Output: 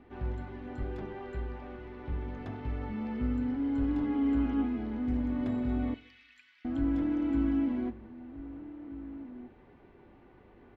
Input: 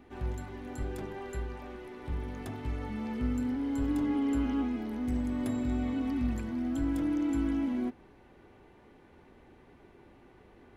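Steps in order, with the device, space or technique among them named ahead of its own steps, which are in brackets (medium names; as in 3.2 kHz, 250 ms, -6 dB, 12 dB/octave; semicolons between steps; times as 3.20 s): shout across a valley (distance through air 230 m; echo from a far wall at 270 m, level -14 dB); 5.94–6.65 s: inverse Chebyshev high-pass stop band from 460 Hz, stop band 70 dB; two-slope reverb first 0.59 s, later 1.7 s, from -26 dB, DRR 13.5 dB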